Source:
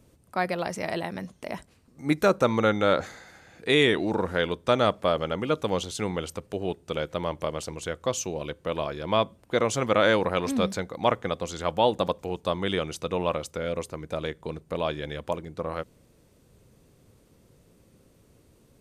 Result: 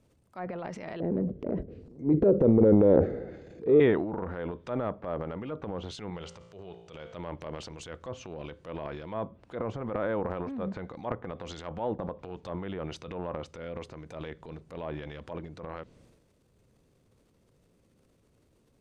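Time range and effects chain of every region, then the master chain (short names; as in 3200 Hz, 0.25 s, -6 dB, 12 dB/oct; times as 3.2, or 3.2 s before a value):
1–3.8 resonant low shelf 660 Hz +13.5 dB, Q 3 + compressor 3:1, threshold -8 dBFS
6.1–7.15 LPF 7700 Hz 24 dB/oct + bell 270 Hz -13.5 dB 0.28 oct + resonator 57 Hz, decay 1 s, mix 50%
whole clip: treble ducked by the level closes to 1200 Hz, closed at -22.5 dBFS; high shelf 9000 Hz -8 dB; transient shaper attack -7 dB, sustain +9 dB; gain -8 dB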